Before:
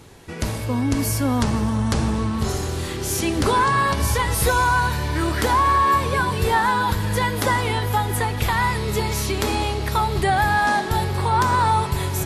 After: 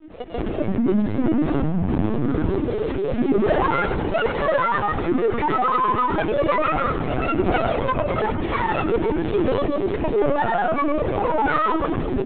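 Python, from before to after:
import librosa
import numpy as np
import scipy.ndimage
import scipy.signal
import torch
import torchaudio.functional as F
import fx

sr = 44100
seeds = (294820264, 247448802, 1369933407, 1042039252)

p1 = scipy.signal.sosfilt(scipy.signal.cheby1(2, 1.0, [120.0, 3000.0], 'bandpass', fs=sr, output='sos'), x)
p2 = fx.peak_eq(p1, sr, hz=370.0, db=14.5, octaves=1.7)
p3 = fx.rider(p2, sr, range_db=4, speed_s=2.0)
p4 = p2 + (p3 * 10.0 ** (0.0 / 20.0))
p5 = 10.0 ** (-5.5 / 20.0) * np.tanh(p4 / 10.0 ** (-5.5 / 20.0))
p6 = fx.granulator(p5, sr, seeds[0], grain_ms=100.0, per_s=20.0, spray_ms=100.0, spread_st=7)
p7 = fx.echo_feedback(p6, sr, ms=98, feedback_pct=28, wet_db=-10.0)
p8 = fx.lpc_vocoder(p7, sr, seeds[1], excitation='pitch_kept', order=16)
y = p8 * 10.0 ** (-8.5 / 20.0)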